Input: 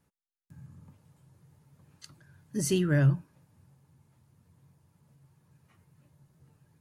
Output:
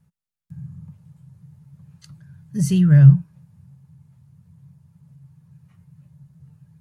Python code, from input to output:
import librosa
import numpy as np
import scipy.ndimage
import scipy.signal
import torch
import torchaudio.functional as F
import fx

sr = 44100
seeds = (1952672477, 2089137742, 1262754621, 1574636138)

y = fx.low_shelf_res(x, sr, hz=220.0, db=9.0, q=3.0)